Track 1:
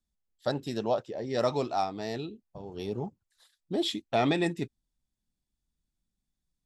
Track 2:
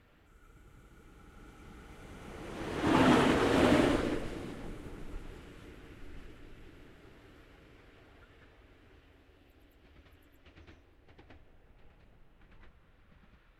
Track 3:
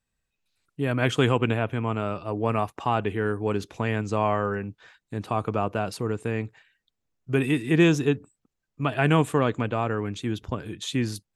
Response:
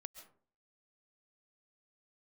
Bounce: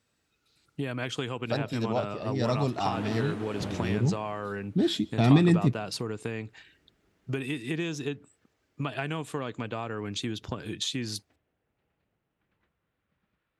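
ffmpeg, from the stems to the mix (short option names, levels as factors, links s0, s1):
-filter_complex "[0:a]asubboost=boost=10.5:cutoff=190,adelay=1050,volume=0.841,asplit=2[s0][s1];[s1]volume=0.335[s2];[1:a]volume=0.211[s3];[2:a]equalizer=f=4600:t=o:w=1.4:g=8.5,acompressor=threshold=0.0282:ratio=10,volume=1.33[s4];[3:a]atrim=start_sample=2205[s5];[s2][s5]afir=irnorm=-1:irlink=0[s6];[s0][s3][s4][s6]amix=inputs=4:normalize=0,highpass=93"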